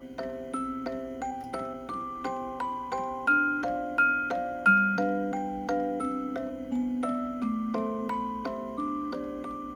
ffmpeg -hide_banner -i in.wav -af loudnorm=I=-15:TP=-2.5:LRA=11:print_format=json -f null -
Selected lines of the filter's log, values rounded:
"input_i" : "-30.2",
"input_tp" : "-11.0",
"input_lra" : "6.1",
"input_thresh" : "-40.2",